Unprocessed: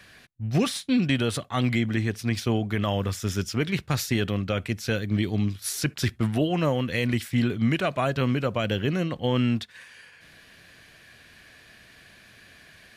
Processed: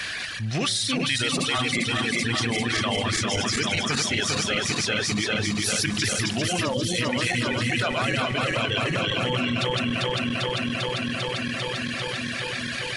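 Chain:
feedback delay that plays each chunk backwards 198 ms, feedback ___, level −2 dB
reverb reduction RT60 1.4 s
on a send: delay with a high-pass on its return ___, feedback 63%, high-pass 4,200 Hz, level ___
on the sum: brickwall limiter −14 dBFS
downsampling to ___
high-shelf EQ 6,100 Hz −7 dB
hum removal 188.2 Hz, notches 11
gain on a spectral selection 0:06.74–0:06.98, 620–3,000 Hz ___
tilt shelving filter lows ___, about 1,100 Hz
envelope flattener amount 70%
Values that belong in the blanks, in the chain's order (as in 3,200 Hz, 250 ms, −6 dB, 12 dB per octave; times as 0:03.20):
85%, 162 ms, −20.5 dB, 22,050 Hz, −15 dB, −7.5 dB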